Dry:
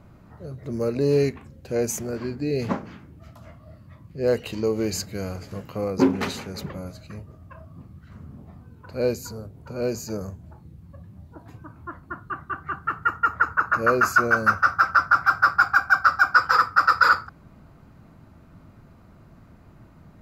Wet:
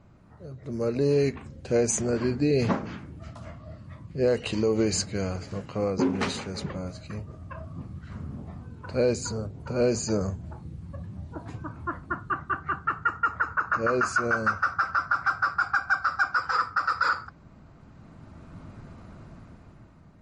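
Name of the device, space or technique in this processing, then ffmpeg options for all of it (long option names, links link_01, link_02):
low-bitrate web radio: -af "dynaudnorm=framelen=200:gausssize=11:maxgain=11.5dB,alimiter=limit=-9dB:level=0:latency=1:release=126,volume=-5dB" -ar 32000 -c:a libmp3lame -b:a 40k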